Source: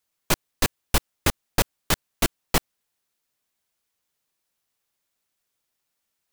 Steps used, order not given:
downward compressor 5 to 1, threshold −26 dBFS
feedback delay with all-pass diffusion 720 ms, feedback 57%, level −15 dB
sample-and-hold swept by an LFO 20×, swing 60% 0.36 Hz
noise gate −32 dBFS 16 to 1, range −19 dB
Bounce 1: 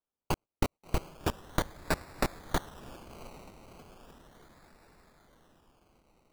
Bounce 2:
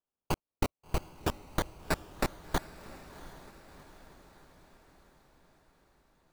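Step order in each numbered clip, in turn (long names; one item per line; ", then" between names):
noise gate, then downward compressor, then feedback delay with all-pass diffusion, then sample-and-hold swept by an LFO
downward compressor, then noise gate, then sample-and-hold swept by an LFO, then feedback delay with all-pass diffusion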